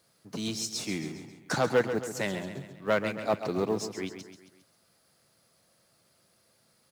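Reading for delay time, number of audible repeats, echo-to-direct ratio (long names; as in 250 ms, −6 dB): 135 ms, 4, −8.5 dB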